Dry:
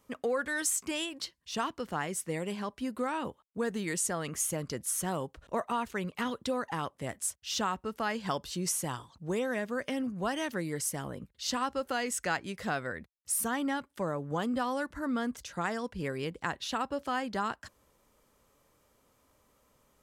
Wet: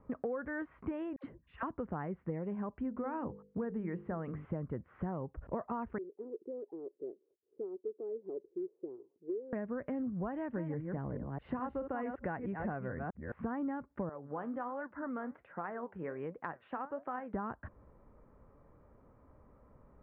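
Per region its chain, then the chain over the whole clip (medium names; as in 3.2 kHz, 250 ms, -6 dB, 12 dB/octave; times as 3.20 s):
1.16–1.63 s: peaking EQ 940 Hz -4.5 dB 1.4 oct + phase dispersion lows, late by 84 ms, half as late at 760 Hz
2.76–4.45 s: hum notches 50/100/150/200/250/300/350/400/450/500 Hz + tape noise reduction on one side only encoder only
5.98–9.53 s: Butterworth band-pass 390 Hz, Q 4.1 + short-mantissa float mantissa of 4-bit
10.31–13.34 s: chunks repeated in reverse 215 ms, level -7 dB + band-stop 1.3 kHz, Q 17
14.09–17.34 s: frequency weighting A + flange 1.3 Hz, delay 3.6 ms, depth 9 ms, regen +74%
whole clip: Bessel low-pass 1.1 kHz, order 8; bass shelf 190 Hz +8 dB; compression 4:1, threshold -42 dBFS; trim +5.5 dB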